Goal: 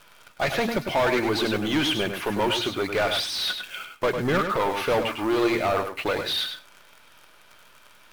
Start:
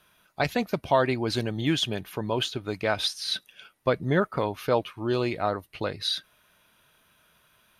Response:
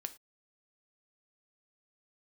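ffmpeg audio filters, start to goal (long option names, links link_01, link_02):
-filter_complex "[0:a]bandreject=frequency=119.7:width_type=h:width=4,bandreject=frequency=239.4:width_type=h:width=4,asplit=2[link_01][link_02];[link_02]highpass=frequency=720:poles=1,volume=28dB,asoftclip=type=tanh:threshold=-8.5dB[link_03];[link_01][link_03]amix=inputs=2:normalize=0,lowpass=frequency=2600:poles=1,volume=-6dB,acrusher=bits=7:dc=4:mix=0:aa=0.000001,asetrate=42336,aresample=44100,asplit=2[link_04][link_05];[1:a]atrim=start_sample=2205,asetrate=43659,aresample=44100,adelay=101[link_06];[link_05][link_06]afir=irnorm=-1:irlink=0,volume=-4.5dB[link_07];[link_04][link_07]amix=inputs=2:normalize=0,volume=-6dB"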